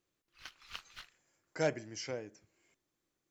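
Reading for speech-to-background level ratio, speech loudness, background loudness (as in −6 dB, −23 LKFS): 13.0 dB, −38.0 LKFS, −51.0 LKFS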